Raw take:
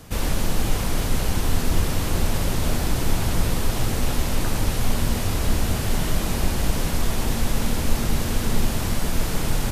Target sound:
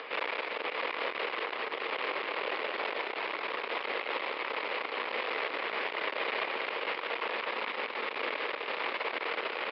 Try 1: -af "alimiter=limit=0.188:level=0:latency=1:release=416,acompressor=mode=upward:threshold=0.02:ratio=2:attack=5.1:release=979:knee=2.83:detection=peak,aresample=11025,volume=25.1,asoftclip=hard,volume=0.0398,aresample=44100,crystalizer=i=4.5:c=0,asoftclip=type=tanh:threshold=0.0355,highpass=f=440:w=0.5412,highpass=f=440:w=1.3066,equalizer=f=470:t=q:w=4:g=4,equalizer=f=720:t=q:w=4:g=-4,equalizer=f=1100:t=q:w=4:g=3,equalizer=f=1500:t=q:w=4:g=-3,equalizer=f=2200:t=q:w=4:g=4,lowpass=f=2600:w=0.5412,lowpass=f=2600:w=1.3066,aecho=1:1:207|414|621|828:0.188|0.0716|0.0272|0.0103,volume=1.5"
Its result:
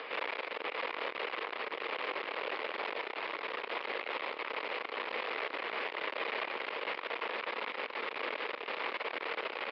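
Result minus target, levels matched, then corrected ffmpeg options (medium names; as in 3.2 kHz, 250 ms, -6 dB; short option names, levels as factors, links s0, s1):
saturation: distortion +14 dB; echo-to-direct -8 dB
-af "alimiter=limit=0.188:level=0:latency=1:release=416,acompressor=mode=upward:threshold=0.02:ratio=2:attack=5.1:release=979:knee=2.83:detection=peak,aresample=11025,volume=25.1,asoftclip=hard,volume=0.0398,aresample=44100,crystalizer=i=4.5:c=0,asoftclip=type=tanh:threshold=0.106,highpass=f=440:w=0.5412,highpass=f=440:w=1.3066,equalizer=f=470:t=q:w=4:g=4,equalizer=f=720:t=q:w=4:g=-4,equalizer=f=1100:t=q:w=4:g=3,equalizer=f=1500:t=q:w=4:g=-3,equalizer=f=2200:t=q:w=4:g=4,lowpass=f=2600:w=0.5412,lowpass=f=2600:w=1.3066,aecho=1:1:207|414|621|828:0.473|0.18|0.0683|0.026,volume=1.5"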